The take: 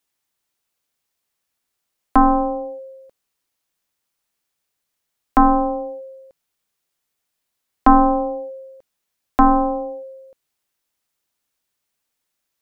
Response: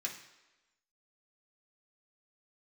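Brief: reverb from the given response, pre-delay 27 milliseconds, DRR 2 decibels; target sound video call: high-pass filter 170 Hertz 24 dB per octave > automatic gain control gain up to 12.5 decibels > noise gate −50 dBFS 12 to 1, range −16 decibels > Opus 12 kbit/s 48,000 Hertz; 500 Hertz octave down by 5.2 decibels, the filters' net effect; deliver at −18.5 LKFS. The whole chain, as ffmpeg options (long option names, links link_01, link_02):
-filter_complex "[0:a]equalizer=frequency=500:width_type=o:gain=-5.5,asplit=2[link_01][link_02];[1:a]atrim=start_sample=2205,adelay=27[link_03];[link_02][link_03]afir=irnorm=-1:irlink=0,volume=-2.5dB[link_04];[link_01][link_04]amix=inputs=2:normalize=0,highpass=frequency=170:width=0.5412,highpass=frequency=170:width=1.3066,dynaudnorm=maxgain=12.5dB,agate=range=-16dB:threshold=-50dB:ratio=12,volume=-2dB" -ar 48000 -c:a libopus -b:a 12k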